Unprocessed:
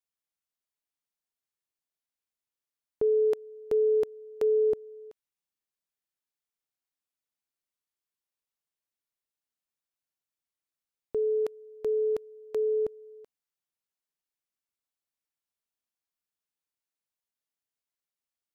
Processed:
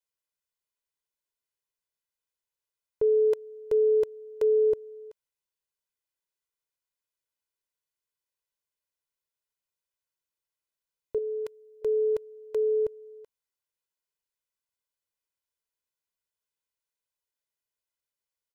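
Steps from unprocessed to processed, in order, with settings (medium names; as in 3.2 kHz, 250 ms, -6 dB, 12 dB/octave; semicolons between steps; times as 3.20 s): 11.18–11.82 s: peaking EQ 540 Hz -8 dB 1.7 oct; comb 2 ms, depth 70%; trim -2 dB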